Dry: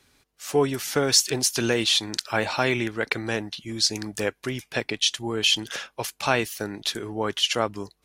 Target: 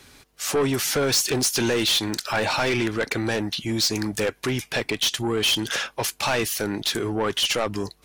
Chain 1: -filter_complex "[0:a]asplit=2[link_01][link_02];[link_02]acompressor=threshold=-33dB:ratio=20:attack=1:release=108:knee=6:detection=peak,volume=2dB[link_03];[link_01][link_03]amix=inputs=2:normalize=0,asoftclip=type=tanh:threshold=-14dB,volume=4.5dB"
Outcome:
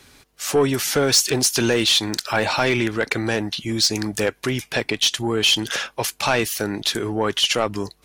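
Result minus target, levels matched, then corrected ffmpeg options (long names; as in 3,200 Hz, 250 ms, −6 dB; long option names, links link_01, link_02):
soft clipping: distortion −7 dB
-filter_complex "[0:a]asplit=2[link_01][link_02];[link_02]acompressor=threshold=-33dB:ratio=20:attack=1:release=108:knee=6:detection=peak,volume=2dB[link_03];[link_01][link_03]amix=inputs=2:normalize=0,asoftclip=type=tanh:threshold=-22dB,volume=4.5dB"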